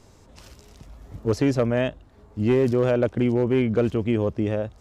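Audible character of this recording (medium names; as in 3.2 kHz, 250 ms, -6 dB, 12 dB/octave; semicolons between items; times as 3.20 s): noise floor -53 dBFS; spectral tilt -7.0 dB/octave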